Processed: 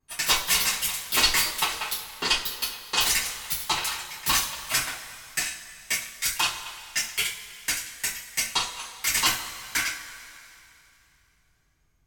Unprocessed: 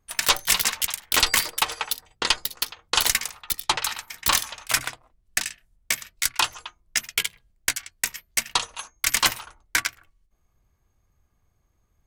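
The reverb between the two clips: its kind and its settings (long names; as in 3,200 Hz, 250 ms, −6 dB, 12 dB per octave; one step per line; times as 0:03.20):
coupled-rooms reverb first 0.32 s, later 2.9 s, from −19 dB, DRR −9.5 dB
level −11.5 dB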